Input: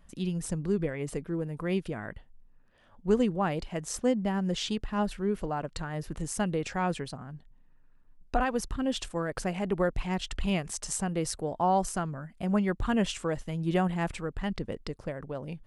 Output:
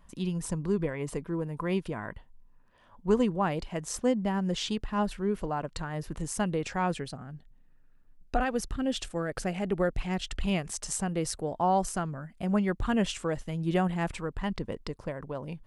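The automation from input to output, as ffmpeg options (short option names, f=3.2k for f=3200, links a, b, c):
-af "asetnsamples=n=441:p=0,asendcmd='3.35 equalizer g 3.5;6.93 equalizer g -7;10.43 equalizer g -0.5;14.12 equalizer g 7',equalizer=f=1k:t=o:w=0.26:g=10.5"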